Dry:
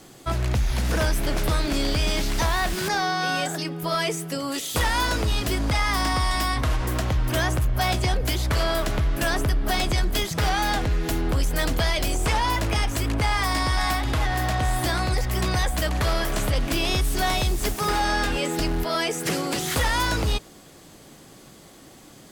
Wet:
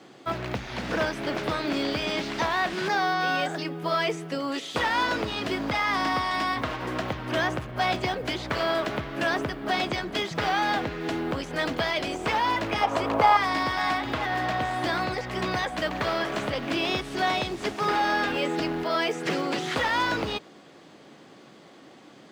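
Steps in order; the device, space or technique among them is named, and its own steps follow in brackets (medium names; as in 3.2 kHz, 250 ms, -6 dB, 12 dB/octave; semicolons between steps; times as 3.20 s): early digital voice recorder (band-pass 200–3600 Hz; block-companded coder 7-bit); 12.81–13.37 s: high-order bell 760 Hz +10 dB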